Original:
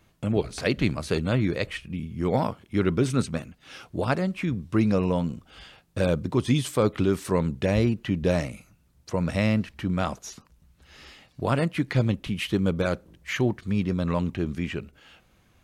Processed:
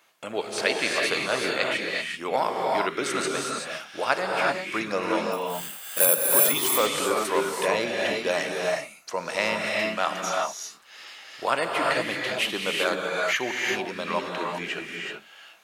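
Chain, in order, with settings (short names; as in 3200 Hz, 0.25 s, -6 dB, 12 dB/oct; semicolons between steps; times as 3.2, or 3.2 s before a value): HPF 700 Hz 12 dB/oct; 5.32–6.47 careless resampling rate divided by 4×, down none, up zero stuff; non-linear reverb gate 0.41 s rising, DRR -1 dB; gain +5 dB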